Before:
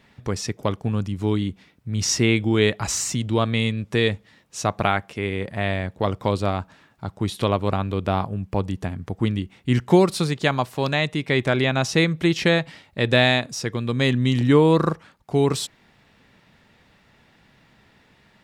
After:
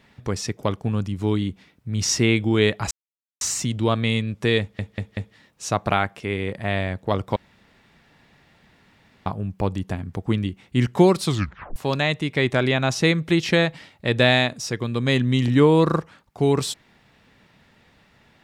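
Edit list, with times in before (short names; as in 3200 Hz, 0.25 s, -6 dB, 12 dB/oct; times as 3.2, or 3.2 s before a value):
2.91 insert silence 0.50 s
4.1 stutter 0.19 s, 4 plays
6.29–8.19 room tone
10.18 tape stop 0.51 s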